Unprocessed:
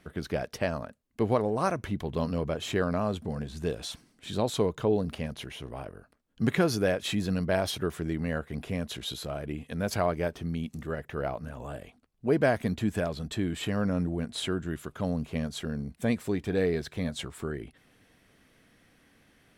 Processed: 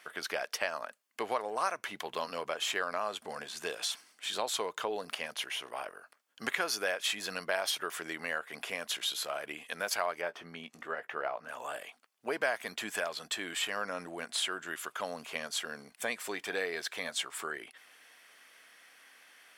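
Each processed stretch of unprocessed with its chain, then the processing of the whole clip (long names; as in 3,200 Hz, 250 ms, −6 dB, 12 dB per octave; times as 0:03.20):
0:10.21–0:11.49: low-pass filter 1,700 Hz 6 dB per octave + double-tracking delay 17 ms −11 dB
whole clip: high-pass filter 960 Hz 12 dB per octave; notch filter 3,900 Hz, Q 16; downward compressor 2 to 1, threshold −41 dBFS; level +8 dB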